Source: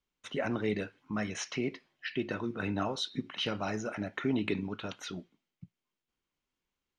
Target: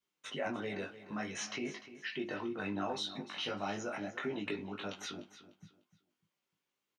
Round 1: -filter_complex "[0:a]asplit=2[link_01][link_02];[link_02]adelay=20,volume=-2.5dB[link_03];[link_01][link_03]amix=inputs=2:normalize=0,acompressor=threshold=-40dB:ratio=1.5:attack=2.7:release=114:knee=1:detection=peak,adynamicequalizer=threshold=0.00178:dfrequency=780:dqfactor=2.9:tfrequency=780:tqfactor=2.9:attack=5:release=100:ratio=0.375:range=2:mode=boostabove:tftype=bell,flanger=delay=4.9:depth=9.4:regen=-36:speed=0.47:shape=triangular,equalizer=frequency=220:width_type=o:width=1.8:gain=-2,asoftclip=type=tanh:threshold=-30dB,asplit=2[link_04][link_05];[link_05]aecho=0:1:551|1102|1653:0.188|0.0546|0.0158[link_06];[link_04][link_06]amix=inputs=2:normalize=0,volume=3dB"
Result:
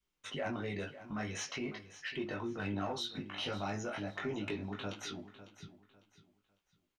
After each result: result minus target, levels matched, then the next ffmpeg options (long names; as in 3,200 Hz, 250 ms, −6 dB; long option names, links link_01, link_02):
echo 252 ms late; soft clipping: distortion +19 dB; 125 Hz band +6.0 dB
-filter_complex "[0:a]asplit=2[link_01][link_02];[link_02]adelay=20,volume=-2.5dB[link_03];[link_01][link_03]amix=inputs=2:normalize=0,acompressor=threshold=-40dB:ratio=1.5:attack=2.7:release=114:knee=1:detection=peak,adynamicequalizer=threshold=0.00178:dfrequency=780:dqfactor=2.9:tfrequency=780:tqfactor=2.9:attack=5:release=100:ratio=0.375:range=2:mode=boostabove:tftype=bell,flanger=delay=4.9:depth=9.4:regen=-36:speed=0.47:shape=triangular,equalizer=frequency=220:width_type=o:width=1.8:gain=-2,asoftclip=type=tanh:threshold=-30dB,asplit=2[link_04][link_05];[link_05]aecho=0:1:299|598|897:0.188|0.0546|0.0158[link_06];[link_04][link_06]amix=inputs=2:normalize=0,volume=3dB"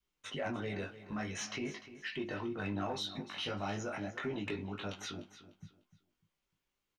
soft clipping: distortion +19 dB; 125 Hz band +5.5 dB
-filter_complex "[0:a]asplit=2[link_01][link_02];[link_02]adelay=20,volume=-2.5dB[link_03];[link_01][link_03]amix=inputs=2:normalize=0,acompressor=threshold=-40dB:ratio=1.5:attack=2.7:release=114:knee=1:detection=peak,adynamicequalizer=threshold=0.00178:dfrequency=780:dqfactor=2.9:tfrequency=780:tqfactor=2.9:attack=5:release=100:ratio=0.375:range=2:mode=boostabove:tftype=bell,flanger=delay=4.9:depth=9.4:regen=-36:speed=0.47:shape=triangular,equalizer=frequency=220:width_type=o:width=1.8:gain=-2,asoftclip=type=tanh:threshold=-20dB,asplit=2[link_04][link_05];[link_05]aecho=0:1:299|598|897:0.188|0.0546|0.0158[link_06];[link_04][link_06]amix=inputs=2:normalize=0,volume=3dB"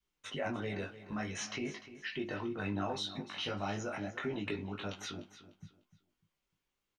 125 Hz band +5.5 dB
-filter_complex "[0:a]asplit=2[link_01][link_02];[link_02]adelay=20,volume=-2.5dB[link_03];[link_01][link_03]amix=inputs=2:normalize=0,acompressor=threshold=-40dB:ratio=1.5:attack=2.7:release=114:knee=1:detection=peak,adynamicequalizer=threshold=0.00178:dfrequency=780:dqfactor=2.9:tfrequency=780:tqfactor=2.9:attack=5:release=100:ratio=0.375:range=2:mode=boostabove:tftype=bell,flanger=delay=4.9:depth=9.4:regen=-36:speed=0.47:shape=triangular,highpass=170,equalizer=frequency=220:width_type=o:width=1.8:gain=-2,asoftclip=type=tanh:threshold=-20dB,asplit=2[link_04][link_05];[link_05]aecho=0:1:299|598|897:0.188|0.0546|0.0158[link_06];[link_04][link_06]amix=inputs=2:normalize=0,volume=3dB"